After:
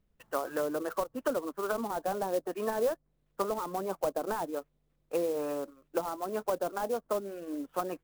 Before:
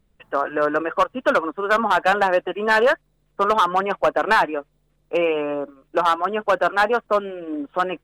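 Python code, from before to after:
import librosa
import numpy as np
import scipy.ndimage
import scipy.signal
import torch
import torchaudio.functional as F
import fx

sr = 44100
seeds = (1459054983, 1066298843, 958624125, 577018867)

y = fx.env_lowpass_down(x, sr, base_hz=590.0, full_db=-16.0)
y = fx.clock_jitter(y, sr, seeds[0], jitter_ms=0.036)
y = F.gain(torch.from_numpy(y), -9.0).numpy()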